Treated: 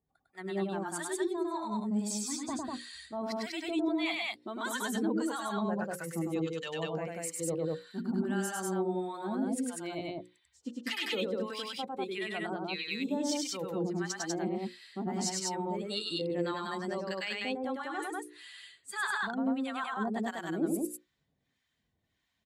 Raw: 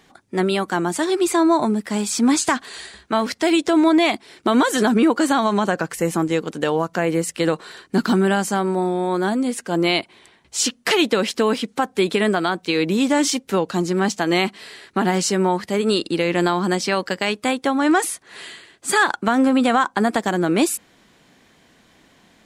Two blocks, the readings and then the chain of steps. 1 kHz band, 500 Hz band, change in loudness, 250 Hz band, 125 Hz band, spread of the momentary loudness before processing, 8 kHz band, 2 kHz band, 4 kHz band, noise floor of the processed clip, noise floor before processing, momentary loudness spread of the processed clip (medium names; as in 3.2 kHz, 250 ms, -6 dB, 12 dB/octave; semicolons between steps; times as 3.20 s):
-16.0 dB, -15.0 dB, -14.5 dB, -14.5 dB, -13.5 dB, 6 LU, -13.0 dB, -14.0 dB, -13.0 dB, -80 dBFS, -56 dBFS, 7 LU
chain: expander on every frequency bin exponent 1.5; high-pass 50 Hz; hum notches 60/120/180/240/300/360/420/480/540 Hz; time-frequency box 6.22–7.03 s, 2–7.4 kHz +8 dB; reverse; compression, threshold -28 dBFS, peak gain reduction 14 dB; reverse; harmonic tremolo 1.6 Hz, depth 100%, crossover 880 Hz; on a send: loudspeakers at several distances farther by 35 m -2 dB, 67 m -1 dB; on the sum: trim -2 dB